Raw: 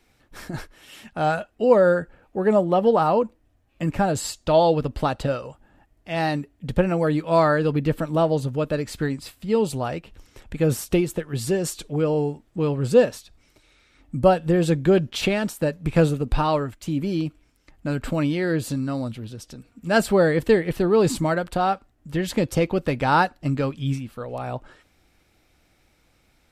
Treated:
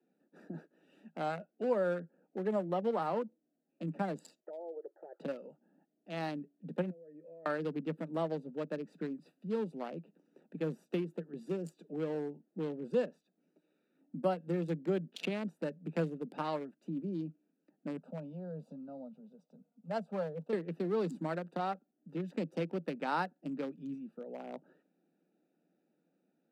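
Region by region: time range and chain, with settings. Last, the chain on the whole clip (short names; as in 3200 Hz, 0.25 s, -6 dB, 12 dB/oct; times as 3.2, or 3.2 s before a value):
4.4–5.2 brick-wall FIR band-pass 330–2000 Hz + compressor 16:1, threshold -25 dBFS + envelope flanger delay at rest 4.7 ms, full sweep at -26.5 dBFS
6.9–7.46 vocal tract filter e + compressor, threshold -39 dBFS
17.97–20.53 HPF 130 Hz + high shelf 4100 Hz -11 dB + fixed phaser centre 800 Hz, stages 4
whole clip: Wiener smoothing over 41 samples; steep high-pass 160 Hz 96 dB/oct; compressor 1.5:1, threshold -35 dBFS; gain -7 dB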